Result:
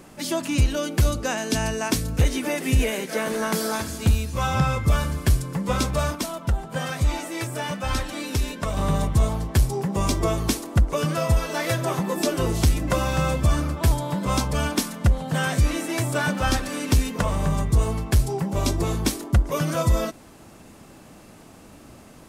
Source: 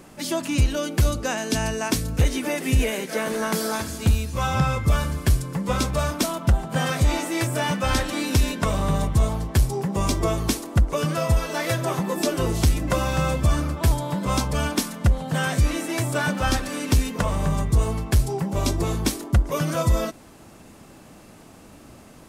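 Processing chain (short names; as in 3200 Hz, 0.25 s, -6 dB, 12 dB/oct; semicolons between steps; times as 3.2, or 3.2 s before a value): 6.15–8.77 flange 1.1 Hz, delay 0.7 ms, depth 1.9 ms, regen +66%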